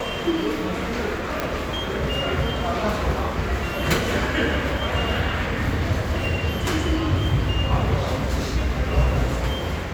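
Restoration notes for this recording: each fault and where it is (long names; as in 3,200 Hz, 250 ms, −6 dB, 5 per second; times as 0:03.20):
0:01.40: click −9 dBFS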